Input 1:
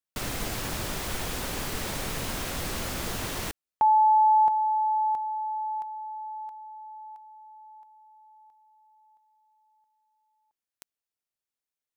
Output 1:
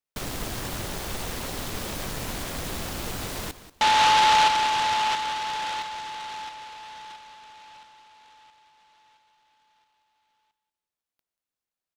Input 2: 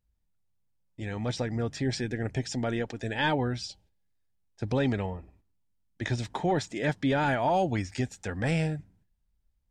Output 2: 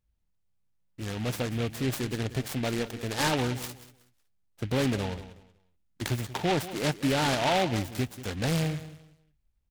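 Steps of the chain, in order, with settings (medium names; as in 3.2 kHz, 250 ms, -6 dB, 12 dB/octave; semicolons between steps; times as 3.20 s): feedback delay 186 ms, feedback 25%, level -14.5 dB; delay time shaken by noise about 2.2 kHz, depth 0.11 ms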